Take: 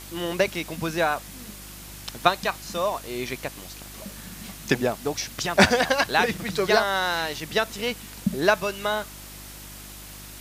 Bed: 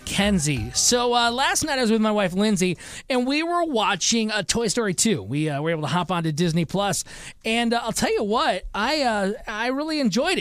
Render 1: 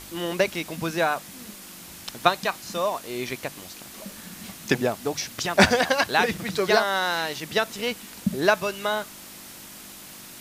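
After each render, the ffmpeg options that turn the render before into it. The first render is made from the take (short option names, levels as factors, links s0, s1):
-af "bandreject=f=50:t=h:w=4,bandreject=f=100:t=h:w=4,bandreject=f=150:t=h:w=4"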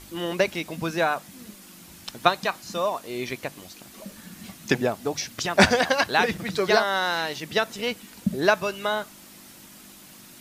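-af "afftdn=nr=6:nf=-43"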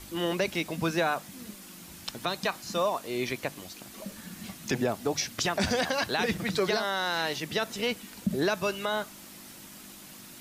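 -filter_complex "[0:a]acrossover=split=370|3000[s0][s1][s2];[s1]acompressor=threshold=0.0708:ratio=6[s3];[s0][s3][s2]amix=inputs=3:normalize=0,alimiter=limit=0.141:level=0:latency=1:release=37"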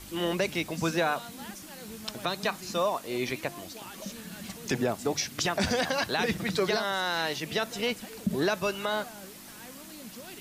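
-filter_complex "[1:a]volume=0.0562[s0];[0:a][s0]amix=inputs=2:normalize=0"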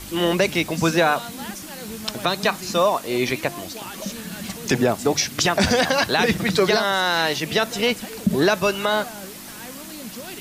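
-af "volume=2.82"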